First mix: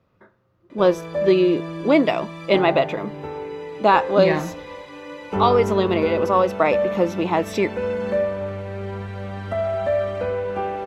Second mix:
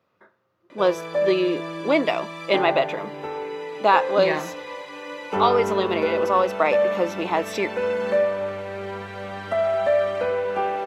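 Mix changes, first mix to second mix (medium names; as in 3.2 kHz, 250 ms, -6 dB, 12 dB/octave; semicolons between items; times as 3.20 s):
background +4.0 dB; master: add high-pass 530 Hz 6 dB/octave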